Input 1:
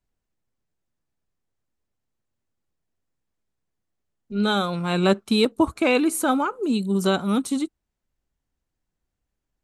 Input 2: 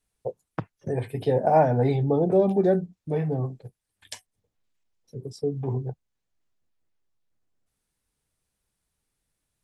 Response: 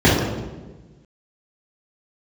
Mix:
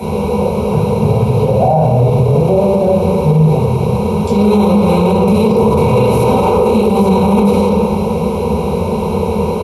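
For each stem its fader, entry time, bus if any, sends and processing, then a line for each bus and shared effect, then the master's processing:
-13.0 dB, 0.00 s, send -6 dB, per-bin compression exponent 0.2; ripple EQ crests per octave 0.84, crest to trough 12 dB
-2.5 dB, 0.15 s, send -10.5 dB, reverb removal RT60 1.9 s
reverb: on, RT60 1.3 s, pre-delay 3 ms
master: fixed phaser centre 740 Hz, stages 4; limiter -3 dBFS, peak gain reduction 11 dB

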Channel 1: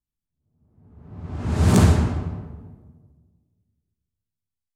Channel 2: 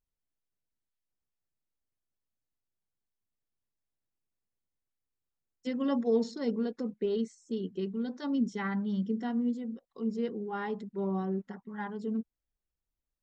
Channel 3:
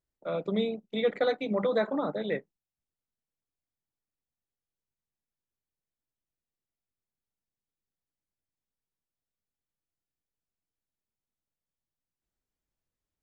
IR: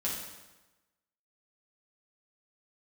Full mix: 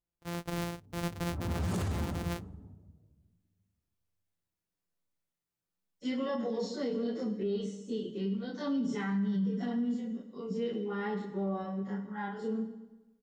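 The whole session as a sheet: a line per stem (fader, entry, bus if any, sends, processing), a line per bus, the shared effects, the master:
-10.5 dB, 0.00 s, send -6 dB, low-pass opened by the level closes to 720 Hz, open at -12 dBFS; reverb removal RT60 0.67 s
-3.0 dB, 0.40 s, send -7 dB, spectral dilation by 60 ms; endless flanger 8.1 ms -1.1 Hz
-6.0 dB, 0.00 s, no send, sample sorter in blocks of 256 samples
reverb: on, RT60 1.1 s, pre-delay 5 ms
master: limiter -25.5 dBFS, peak gain reduction 14 dB

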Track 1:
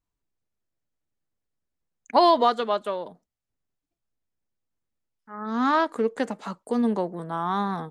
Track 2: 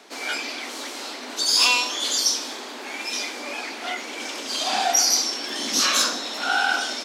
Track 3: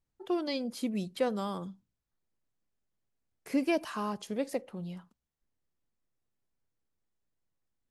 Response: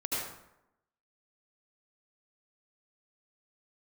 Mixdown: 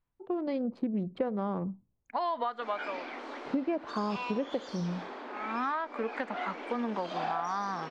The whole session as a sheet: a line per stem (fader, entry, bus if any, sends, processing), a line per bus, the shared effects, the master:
+2.5 dB, 0.00 s, bus A, no send, bell 390 Hz -6.5 dB 0.48 oct; harmonic-percussive split harmonic +4 dB; tilt shelf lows -9 dB, about 1100 Hz; auto duck -21 dB, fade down 0.90 s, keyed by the third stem
-3.0 dB, 2.50 s, bus A, no send, dry
-0.5 dB, 0.00 s, no bus, no send, Wiener smoothing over 25 samples; AGC gain up to 8 dB
bus A: 0.0 dB, low shelf 230 Hz -6.5 dB; compressor 2.5:1, threshold -26 dBFS, peak gain reduction 10.5 dB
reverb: off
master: LPF 1500 Hz 12 dB/oct; compressor 6:1, threshold -28 dBFS, peak gain reduction 11.5 dB

